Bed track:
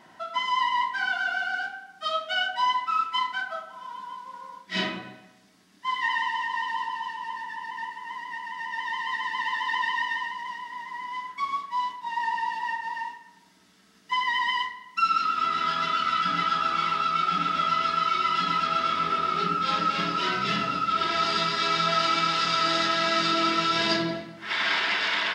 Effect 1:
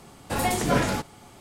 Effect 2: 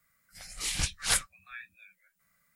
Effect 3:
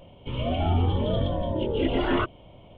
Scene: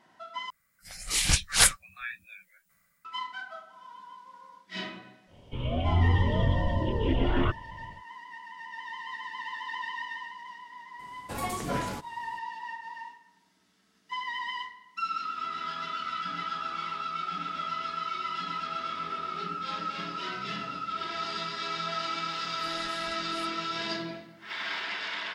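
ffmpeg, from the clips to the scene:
ffmpeg -i bed.wav -i cue0.wav -i cue1.wav -i cue2.wav -filter_complex "[2:a]asplit=2[link_01][link_02];[0:a]volume=-9dB[link_03];[link_01]dynaudnorm=framelen=110:gausssize=9:maxgain=8dB[link_04];[3:a]asubboost=boost=3.5:cutoff=230[link_05];[link_02]acompressor=threshold=-48dB:ratio=6:attack=3.2:release=140:knee=1:detection=peak[link_06];[link_03]asplit=2[link_07][link_08];[link_07]atrim=end=0.504[link_09];[link_04]atrim=end=2.55,asetpts=PTS-STARTPTS,volume=-1dB[link_10];[link_08]atrim=start=3.046[link_11];[link_05]atrim=end=2.77,asetpts=PTS-STARTPTS,volume=-4dB,afade=type=in:duration=0.1,afade=type=out:start_time=2.67:duration=0.1,adelay=5260[link_12];[1:a]atrim=end=1.4,asetpts=PTS-STARTPTS,volume=-9.5dB,afade=type=in:duration=0.004:curve=hsin,afade=type=out:start_time=1.396:duration=0.004:curve=hsin,adelay=10990[link_13];[link_06]atrim=end=2.55,asetpts=PTS-STARTPTS,volume=-2dB,afade=type=in:duration=0.004:curve=hsin,afade=type=out:start_time=2.546:duration=0.004:curve=hsin,adelay=982548S[link_14];[link_09][link_10]acrossfade=duration=0.004:curve1=hsin:curve2=hsin[link_15];[link_15][link_11]acrossfade=duration=0.004:curve1=hsin:curve2=hsin[link_16];[link_16][link_12][link_13][link_14]amix=inputs=4:normalize=0" out.wav

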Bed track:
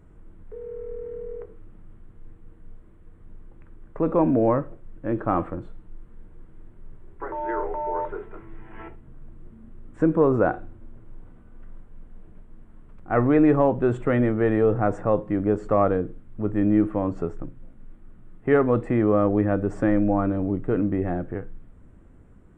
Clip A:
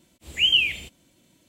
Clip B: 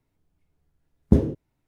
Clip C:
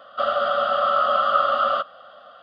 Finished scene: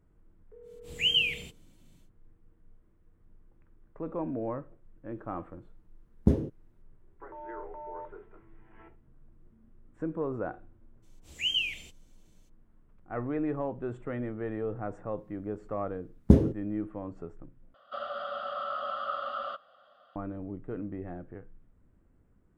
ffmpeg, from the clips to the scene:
ffmpeg -i bed.wav -i cue0.wav -i cue1.wav -i cue2.wav -filter_complex "[1:a]asplit=2[link_01][link_02];[2:a]asplit=2[link_03][link_04];[0:a]volume=-14dB[link_05];[link_01]equalizer=frequency=160:width=1.5:gain=9[link_06];[link_02]equalizer=frequency=6000:width=2.5:gain=7.5[link_07];[link_05]asplit=2[link_08][link_09];[link_08]atrim=end=17.744[link_10];[3:a]atrim=end=2.42,asetpts=PTS-STARTPTS,volume=-15dB[link_11];[link_09]atrim=start=20.156[link_12];[link_06]atrim=end=1.48,asetpts=PTS-STARTPTS,volume=-6.5dB,afade=type=in:duration=0.1,afade=type=out:start_time=1.38:duration=0.1,adelay=620[link_13];[link_03]atrim=end=1.67,asetpts=PTS-STARTPTS,volume=-6dB,afade=type=in:duration=0.004:curve=hsin,afade=type=out:start_time=1.666:duration=0.004:curve=hsin,adelay=5150[link_14];[link_07]atrim=end=1.48,asetpts=PTS-STARTPTS,volume=-10.5dB,afade=type=in:duration=0.02,afade=type=out:start_time=1.46:duration=0.02,adelay=11020[link_15];[link_04]atrim=end=1.67,asetpts=PTS-STARTPTS,volume=-1dB,afade=type=in:duration=0.004:curve=hsin,afade=type=out:start_time=1.666:duration=0.004:curve=hsin,adelay=15180[link_16];[link_10][link_11]acrossfade=duration=0.004:curve1=hsin:curve2=hsin[link_17];[link_17][link_12]acrossfade=duration=0.004:curve1=hsin:curve2=hsin[link_18];[link_18][link_13][link_14][link_15][link_16]amix=inputs=5:normalize=0" out.wav

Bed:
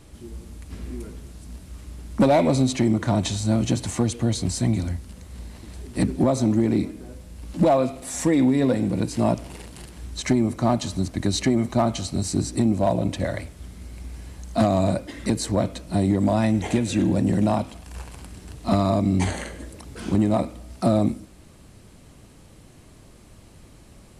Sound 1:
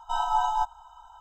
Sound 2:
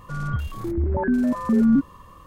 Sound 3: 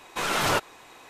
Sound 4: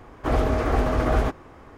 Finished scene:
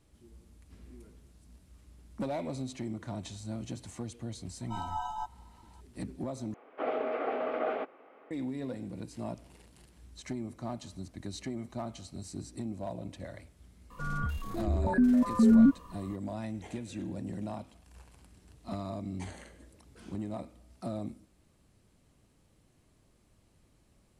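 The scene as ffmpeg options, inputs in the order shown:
ffmpeg -i bed.wav -i cue0.wav -i cue1.wav -i cue2.wav -i cue3.wav -filter_complex "[0:a]volume=-17.5dB[link_01];[4:a]highpass=frequency=320:width=0.5412,highpass=frequency=320:width=1.3066,equalizer=frequency=340:width_type=q:width=4:gain=-8,equalizer=frequency=1000:width_type=q:width=4:gain=-10,equalizer=frequency=1700:width_type=q:width=4:gain=-8,lowpass=frequency=2700:width=0.5412,lowpass=frequency=2700:width=1.3066[link_02];[2:a]aecho=1:1:4.2:0.49[link_03];[link_01]asplit=2[link_04][link_05];[link_04]atrim=end=6.544[link_06];[link_02]atrim=end=1.77,asetpts=PTS-STARTPTS,volume=-4.5dB[link_07];[link_05]atrim=start=8.306[link_08];[1:a]atrim=end=1.2,asetpts=PTS-STARTPTS,volume=-11.5dB,afade=type=in:duration=0.004:curve=hsin,afade=type=out:start_time=1.196:duration=0.004:curve=hsin,adelay=203301S[link_09];[link_03]atrim=end=2.26,asetpts=PTS-STARTPTS,volume=-6dB,afade=type=in:duration=0.004:curve=hsin,afade=type=out:start_time=2.256:duration=0.004:curve=hsin,adelay=13900[link_10];[link_06][link_07]acrossfade=duration=0.004:curve1=hsin:curve2=hsin[link_11];[link_11][link_08]acrossfade=duration=0.004:curve1=hsin:curve2=hsin[link_12];[link_12][link_09][link_10]amix=inputs=3:normalize=0" out.wav

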